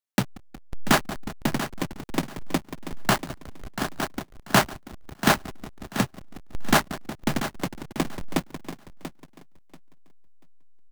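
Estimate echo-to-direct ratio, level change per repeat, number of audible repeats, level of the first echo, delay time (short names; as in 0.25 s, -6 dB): -11.5 dB, -14.0 dB, 2, -11.5 dB, 0.687 s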